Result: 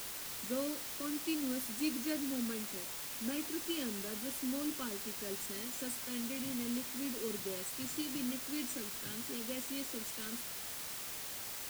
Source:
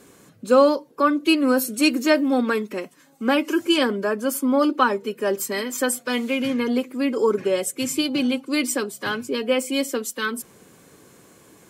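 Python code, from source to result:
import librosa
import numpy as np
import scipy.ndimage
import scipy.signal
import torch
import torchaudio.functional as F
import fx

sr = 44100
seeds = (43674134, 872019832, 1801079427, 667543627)

p1 = fx.tone_stack(x, sr, knobs='10-0-1')
p2 = fx.comb_fb(p1, sr, f0_hz=77.0, decay_s=0.15, harmonics='all', damping=0.0, mix_pct=50)
p3 = fx.quant_dither(p2, sr, seeds[0], bits=6, dither='triangular')
p4 = p2 + F.gain(torch.from_numpy(p3), -10.0).numpy()
y = F.gain(torch.from_numpy(p4), 2.5).numpy()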